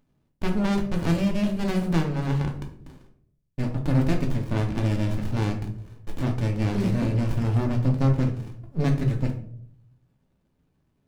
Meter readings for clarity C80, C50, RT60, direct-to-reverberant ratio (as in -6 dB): 13.5 dB, 9.5 dB, 0.65 s, 2.0 dB